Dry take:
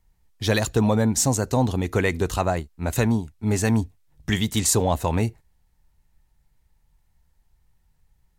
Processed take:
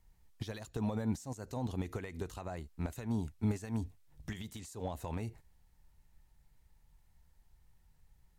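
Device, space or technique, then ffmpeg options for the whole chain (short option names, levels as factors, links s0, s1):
de-esser from a sidechain: -filter_complex "[0:a]asplit=2[s0][s1];[s1]highpass=f=4200:p=1,apad=whole_len=369796[s2];[s0][s2]sidechaincompress=threshold=0.00447:ratio=8:attack=0.54:release=96,volume=0.794"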